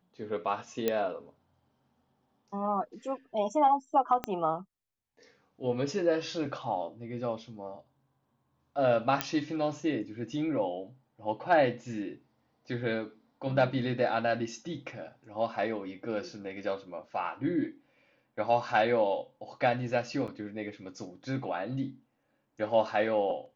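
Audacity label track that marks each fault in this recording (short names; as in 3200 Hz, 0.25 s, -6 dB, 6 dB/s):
0.880000	0.880000	pop -14 dBFS
4.240000	4.240000	pop -17 dBFS
9.210000	9.210000	pop -10 dBFS
20.270000	20.280000	gap 7.3 ms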